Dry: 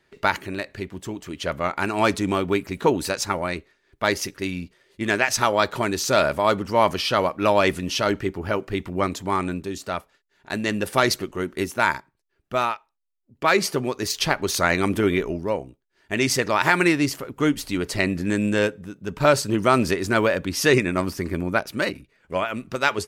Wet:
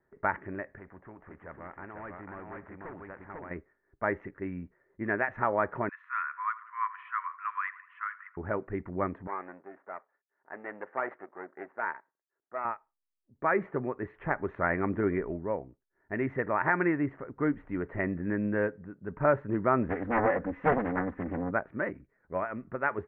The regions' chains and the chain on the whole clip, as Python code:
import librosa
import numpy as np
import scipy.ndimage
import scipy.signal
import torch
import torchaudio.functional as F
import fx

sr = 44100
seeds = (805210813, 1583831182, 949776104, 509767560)

y = fx.chain(x, sr, fx.echo_single(ms=496, db=-4.5),
    fx.clip_hard(threshold_db=-17.0),
    fx.spectral_comp(ratio=2.0), at=(0.78, 3.51))
y = fx.chain(y, sr, fx.brickwall_highpass(low_hz=960.0),
    fx.echo_filtered(ms=82, feedback_pct=55, hz=3700.0, wet_db=-17.5), at=(5.89, 8.37))
y = fx.chain(y, sr, fx.halfwave_gain(db=-12.0),
    fx.bandpass_edges(low_hz=470.0, high_hz=3200.0), at=(9.27, 12.65))
y = fx.chain(y, sr, fx.law_mismatch(coded='mu'),
    fx.comb(ms=4.0, depth=0.73),
    fx.doppler_dist(depth_ms=0.92), at=(19.89, 21.51))
y = scipy.signal.sosfilt(scipy.signal.ellip(4, 1.0, 60, 1900.0, 'lowpass', fs=sr, output='sos'), y)
y = fx.env_lowpass(y, sr, base_hz=1500.0, full_db=-20.0)
y = F.gain(torch.from_numpy(y), -7.0).numpy()